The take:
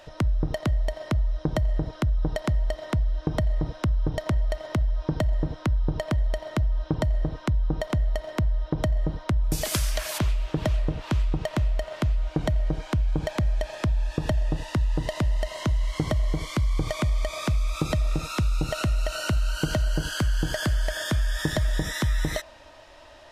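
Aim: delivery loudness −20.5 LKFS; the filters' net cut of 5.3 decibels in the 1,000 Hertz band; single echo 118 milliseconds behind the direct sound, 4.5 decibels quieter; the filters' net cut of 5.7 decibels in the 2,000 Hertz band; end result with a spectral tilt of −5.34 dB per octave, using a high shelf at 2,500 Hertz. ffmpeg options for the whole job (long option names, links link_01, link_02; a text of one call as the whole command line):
ffmpeg -i in.wav -af "equalizer=frequency=1000:width_type=o:gain=-6,equalizer=frequency=2000:width_type=o:gain=-7,highshelf=frequency=2500:gain=4,aecho=1:1:118:0.596,volume=6dB" out.wav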